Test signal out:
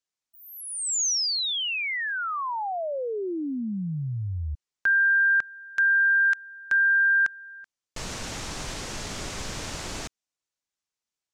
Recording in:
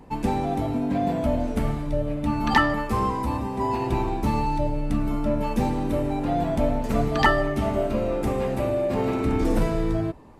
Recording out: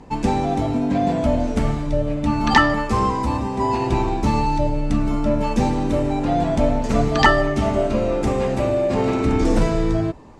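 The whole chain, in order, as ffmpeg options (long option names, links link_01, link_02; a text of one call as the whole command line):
ffmpeg -i in.wav -af "lowpass=frequency=6800:width_type=q:width=1.7,volume=4.5dB" out.wav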